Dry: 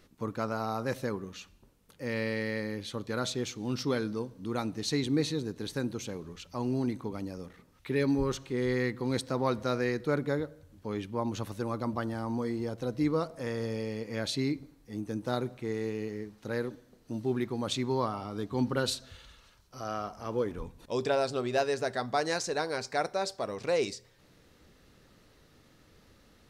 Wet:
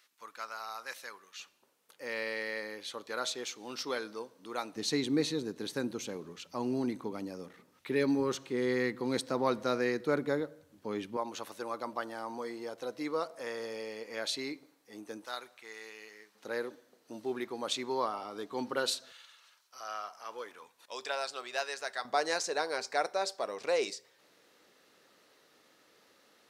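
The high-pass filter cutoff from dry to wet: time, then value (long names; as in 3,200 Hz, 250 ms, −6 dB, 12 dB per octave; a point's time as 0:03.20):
1,400 Hz
from 0:01.40 550 Hz
from 0:04.76 220 Hz
from 0:11.17 500 Hz
from 0:15.25 1,200 Hz
from 0:16.35 420 Hz
from 0:19.12 1,000 Hz
from 0:22.05 420 Hz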